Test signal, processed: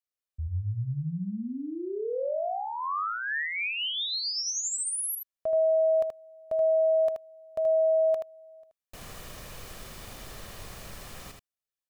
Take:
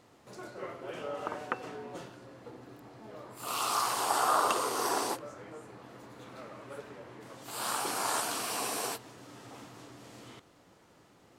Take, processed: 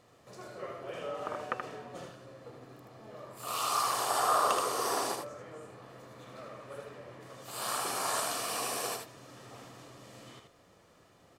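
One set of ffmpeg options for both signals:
-filter_complex "[0:a]aecho=1:1:1.7:0.32,asplit=2[s0][s1];[s1]aecho=0:1:78:0.562[s2];[s0][s2]amix=inputs=2:normalize=0,volume=0.794"

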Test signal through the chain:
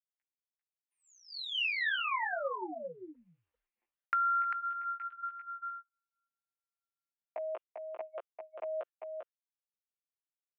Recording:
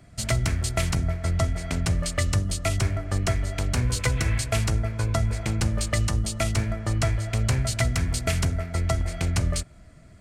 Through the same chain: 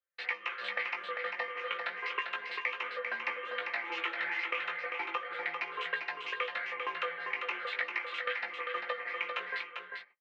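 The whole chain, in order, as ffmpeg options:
-filter_complex "[0:a]afftfilt=real='re*pow(10,9/40*sin(2*PI*(0.83*log(max(b,1)*sr/1024/100)/log(2)-(1.7)*(pts-256)/sr)))':imag='im*pow(10,9/40*sin(2*PI*(0.83*log(max(b,1)*sr/1024/100)/log(2)-(1.7)*(pts-256)/sr)))':win_size=1024:overlap=0.75,flanger=delay=15:depth=3.3:speed=0.35,aecho=1:1:5.8:0.6,agate=range=0.0126:threshold=0.00891:ratio=16:detection=peak,apsyclip=8.41,highpass=f=530:t=q:w=0.5412,highpass=f=530:t=q:w=1.307,lowpass=f=2700:t=q:w=0.5176,lowpass=f=2700:t=q:w=0.7071,lowpass=f=2700:t=q:w=1.932,afreqshift=-160,aderivative,acompressor=threshold=0.0224:ratio=3,asplit=2[s0][s1];[s1]aecho=0:1:396:0.531[s2];[s0][s2]amix=inputs=2:normalize=0"

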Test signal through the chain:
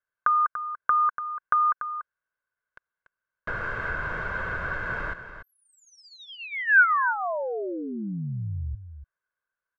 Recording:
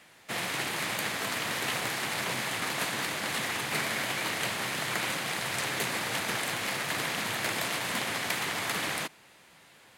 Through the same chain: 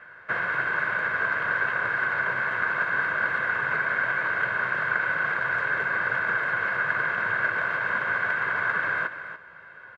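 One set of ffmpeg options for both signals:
-filter_complex "[0:a]aecho=1:1:1.9:0.53,acompressor=threshold=0.0251:ratio=6,lowpass=f=1500:t=q:w=7.9,asplit=2[s0][s1];[s1]aecho=0:1:289:0.282[s2];[s0][s2]amix=inputs=2:normalize=0,volume=1.26"

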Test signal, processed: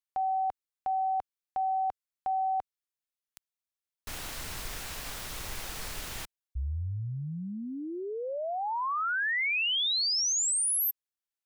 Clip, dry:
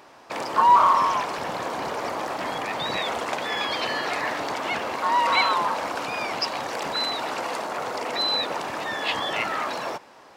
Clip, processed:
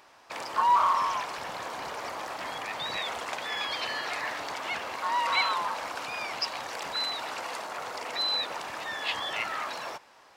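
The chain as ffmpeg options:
-af "equalizer=f=250:w=0.38:g=-9,volume=0.668"

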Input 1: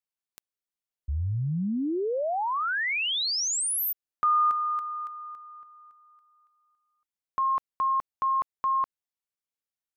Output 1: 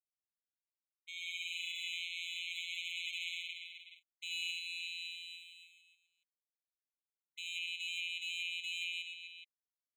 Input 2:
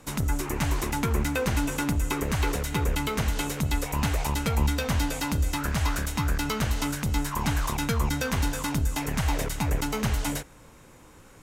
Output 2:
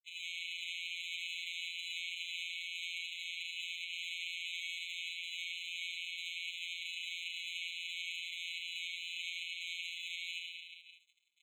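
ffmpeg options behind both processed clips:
-filter_complex "[0:a]alimiter=limit=0.119:level=0:latency=1,aresample=11025,acrusher=samples=24:mix=1:aa=0.000001,aresample=44100,aeval=exprs='sgn(val(0))*max(abs(val(0))-0.00531,0)':c=same,aecho=1:1:80|176|291.2|429.4|595.3:0.631|0.398|0.251|0.158|0.1,asplit=2[s0][s1];[s1]highpass=f=720:p=1,volume=15.8,asoftclip=type=tanh:threshold=0.211[s2];[s0][s2]amix=inputs=2:normalize=0,lowpass=f=1700:p=1,volume=0.501,afftfilt=real='hypot(re,im)*cos(PI*b)':imag='0':win_size=1024:overlap=0.75,afftfilt=real='re*eq(mod(floor(b*sr/1024/2100),2),1)':imag='im*eq(mod(floor(b*sr/1024/2100),2),1)':win_size=1024:overlap=0.75,volume=1.33"

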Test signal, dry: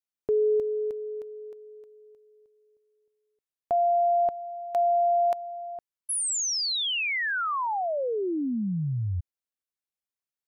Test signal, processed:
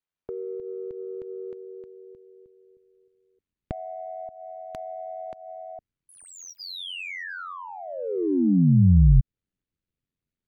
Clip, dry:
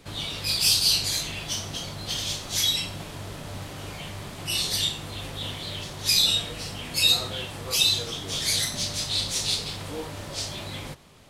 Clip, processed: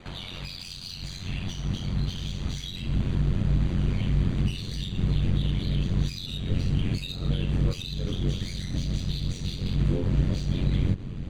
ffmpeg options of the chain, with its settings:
-filter_complex "[0:a]aeval=exprs='val(0)*sin(2*PI*45*n/s)':c=same,highshelf=f=2400:g=5,asplit=2[s0][s1];[s1]alimiter=limit=0.0891:level=0:latency=1:release=143,volume=0.841[s2];[s0][s2]amix=inputs=2:normalize=0,acompressor=threshold=0.0224:ratio=4:attack=1.9:release=329:knee=1:detection=peak,asubboost=boost=11:cutoff=240,adynamicsmooth=sensitivity=3:basefreq=3000,asuperstop=centerf=5300:order=20:qfactor=7.9,volume=1.26"

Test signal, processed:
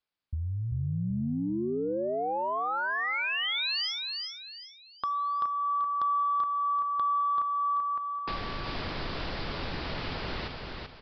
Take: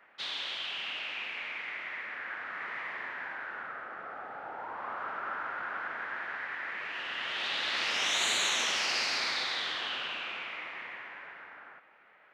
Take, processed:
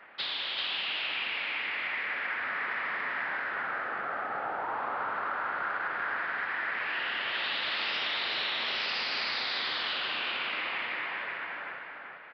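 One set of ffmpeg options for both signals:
-af "acompressor=threshold=0.0112:ratio=5,aresample=11025,aeval=exprs='0.0794*sin(PI/2*1.58*val(0)/0.0794)':c=same,aresample=44100,aecho=1:1:386|772|1158|1544:0.631|0.215|0.0729|0.0248"

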